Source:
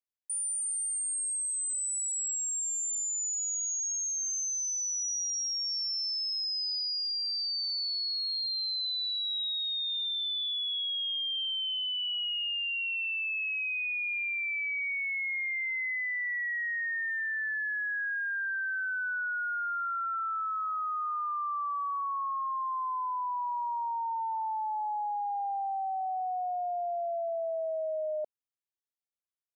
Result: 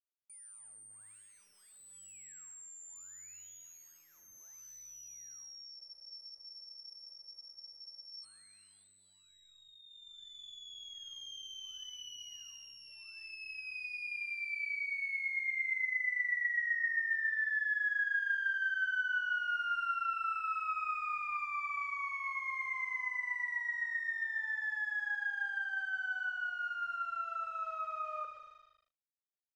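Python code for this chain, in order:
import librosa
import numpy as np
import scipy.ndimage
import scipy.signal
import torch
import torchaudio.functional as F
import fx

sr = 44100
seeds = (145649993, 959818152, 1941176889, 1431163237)

p1 = fx.lower_of_two(x, sr, delay_ms=0.54)
p2 = fx.high_shelf(p1, sr, hz=2300.0, db=-4.0)
p3 = fx.rider(p2, sr, range_db=10, speed_s=0.5)
p4 = p2 + (p3 * 10.0 ** (2.0 / 20.0))
p5 = scipy.signal.sosfilt(scipy.signal.butter(8, 490.0, 'highpass', fs=sr, output='sos'), p4)
p6 = fx.fixed_phaser(p5, sr, hz=1700.0, stages=4)
p7 = p6 + fx.echo_single(p6, sr, ms=125, db=-10.5, dry=0)
p8 = fx.rev_spring(p7, sr, rt60_s=1.8, pass_ms=(37,), chirp_ms=65, drr_db=4.5)
p9 = np.sign(p8) * np.maximum(np.abs(p8) - 10.0 ** (-55.5 / 20.0), 0.0)
p10 = scipy.signal.sosfilt(scipy.signal.butter(2, 4200.0, 'lowpass', fs=sr, output='sos'), p9)
p11 = fx.spec_freeze(p10, sr, seeds[0], at_s=5.79, hold_s=2.45)
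y = p11 * 10.0 ** (-6.0 / 20.0)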